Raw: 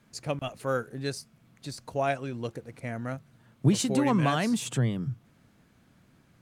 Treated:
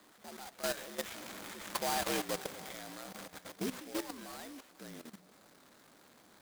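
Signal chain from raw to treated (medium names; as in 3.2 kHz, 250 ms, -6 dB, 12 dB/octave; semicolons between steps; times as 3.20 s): one-bit delta coder 16 kbps, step -35.5 dBFS; Doppler pass-by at 2.01 s, 26 m/s, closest 10 m; bass shelf 250 Hz -10 dB; hum notches 60/120/180 Hz; frequency shift +67 Hz; band-passed feedback delay 236 ms, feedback 76%, band-pass 530 Hz, level -18 dB; level held to a coarse grid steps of 14 dB; level-controlled noise filter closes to 1.4 kHz, open at -40.5 dBFS; careless resampling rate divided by 8×, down filtered, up hold; treble shelf 2.5 kHz +11.5 dB; delay time shaken by noise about 3.5 kHz, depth 0.039 ms; trim +7 dB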